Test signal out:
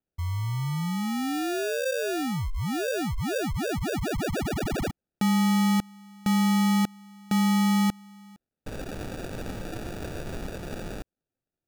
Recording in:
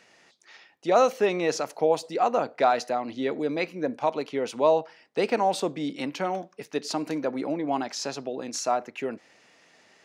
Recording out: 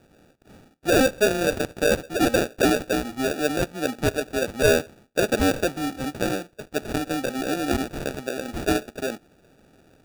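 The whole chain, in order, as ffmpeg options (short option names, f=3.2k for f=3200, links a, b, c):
-af "acrusher=samples=42:mix=1:aa=0.000001,aeval=exprs='0.316*(cos(1*acos(clip(val(0)/0.316,-1,1)))-cos(1*PI/2))+0.0891*(cos(5*acos(clip(val(0)/0.316,-1,1)))-cos(5*PI/2))+0.0501*(cos(7*acos(clip(val(0)/0.316,-1,1)))-cos(7*PI/2))':c=same"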